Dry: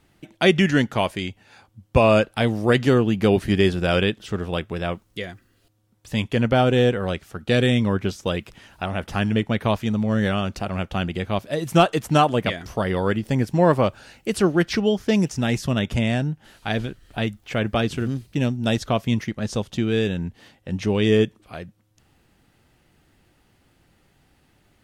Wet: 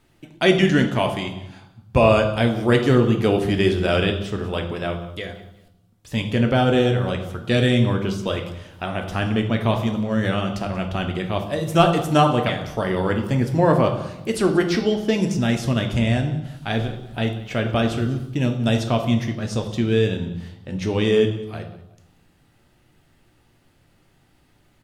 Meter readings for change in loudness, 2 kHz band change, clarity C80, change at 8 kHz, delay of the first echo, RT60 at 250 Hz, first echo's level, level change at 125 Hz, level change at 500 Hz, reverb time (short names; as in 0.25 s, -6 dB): +1.0 dB, 0.0 dB, 10.5 dB, 0.0 dB, 0.186 s, 1.1 s, -18.5 dB, +2.0 dB, +1.0 dB, 0.90 s